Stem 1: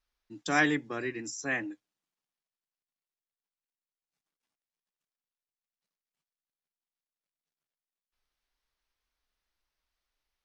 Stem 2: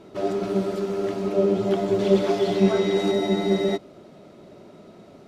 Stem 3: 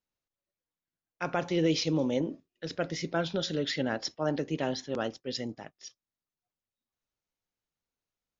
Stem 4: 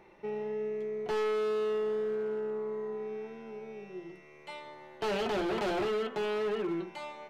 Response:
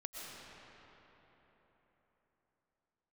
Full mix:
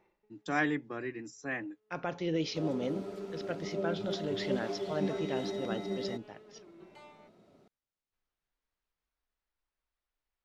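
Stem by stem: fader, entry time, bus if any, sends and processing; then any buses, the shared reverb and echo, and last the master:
-3.0 dB, 0.00 s, no send, low-pass 1.9 kHz 6 dB/octave
-15.0 dB, 2.40 s, no send, none
-5.5 dB, 0.70 s, no send, Bessel low-pass 5.2 kHz
-17.0 dB, 0.00 s, no send, compressor with a negative ratio -38 dBFS, ratio -1; auto duck -23 dB, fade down 0.25 s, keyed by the first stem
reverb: none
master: none

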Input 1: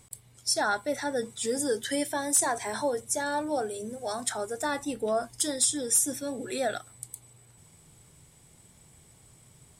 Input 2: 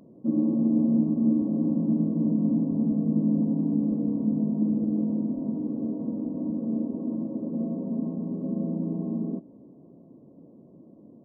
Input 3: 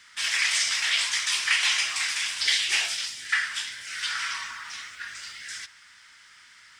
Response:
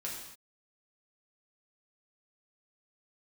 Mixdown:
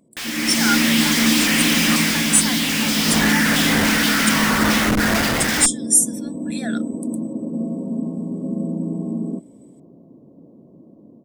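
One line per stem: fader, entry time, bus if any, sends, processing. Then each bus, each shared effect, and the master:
+1.5 dB, 0.00 s, no send, high-pass 1.4 kHz; spectral contrast expander 1.5:1
-7.0 dB, 0.00 s, no send, none
-1.5 dB, 0.00 s, no send, Schmitt trigger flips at -39 dBFS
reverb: none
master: level rider gain up to 11.5 dB

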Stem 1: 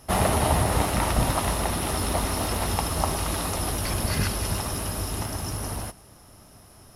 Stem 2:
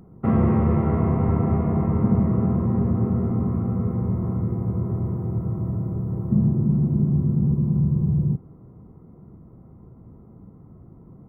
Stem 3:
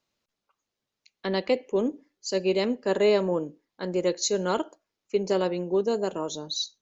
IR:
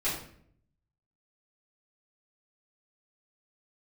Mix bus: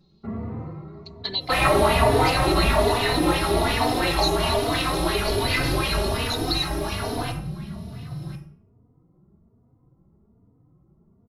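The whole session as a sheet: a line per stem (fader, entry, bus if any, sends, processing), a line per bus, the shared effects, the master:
-2.0 dB, 1.40 s, bus A, send -5 dB, sweeping bell 2.8 Hz 320–2800 Hz +16 dB
-10.5 dB, 0.00 s, no bus, send -18.5 dB, vibrato 9.1 Hz 43 cents; auto duck -15 dB, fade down 0.40 s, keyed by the third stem
+2.0 dB, 0.00 s, bus A, send -23 dB, tone controls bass -5 dB, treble +8 dB; touch-sensitive flanger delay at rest 6 ms, full sweep at -24 dBFS
bus A: 0.0 dB, resonant low-pass 4.1 kHz, resonance Q 8.2; compression 3:1, threshold -24 dBFS, peak gain reduction 14 dB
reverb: on, RT60 0.60 s, pre-delay 3 ms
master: endless flanger 3.3 ms +1.2 Hz

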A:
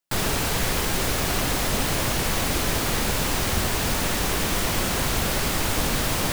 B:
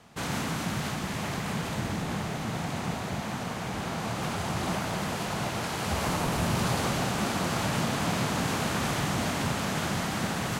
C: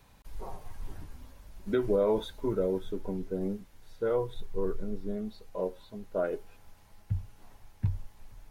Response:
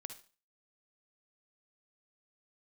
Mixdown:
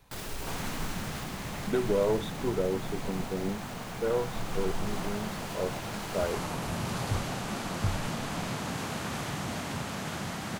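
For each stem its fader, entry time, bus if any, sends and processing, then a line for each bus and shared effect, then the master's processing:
-10.5 dB, 0.00 s, send -12.5 dB, peak limiter -18.5 dBFS, peak gain reduction 7.5 dB; auto duck -13 dB, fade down 1.95 s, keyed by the third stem
-6.0 dB, 0.30 s, no send, none
+1.0 dB, 0.00 s, no send, partial rectifier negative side -3 dB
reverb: on, RT60 0.35 s, pre-delay 48 ms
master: none

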